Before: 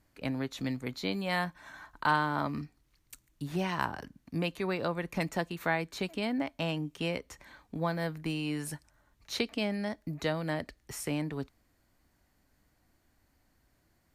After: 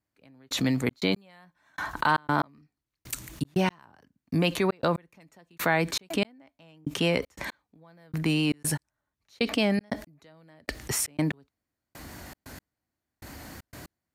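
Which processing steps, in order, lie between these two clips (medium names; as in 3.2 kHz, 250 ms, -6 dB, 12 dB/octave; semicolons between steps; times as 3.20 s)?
high-pass 72 Hz; in parallel at 0 dB: peak limiter -22.5 dBFS, peak gain reduction 8.5 dB; on the sum: vibrato 4.3 Hz 30 cents; trance gate "....xxx.x." 118 bpm -60 dB; level flattener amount 50%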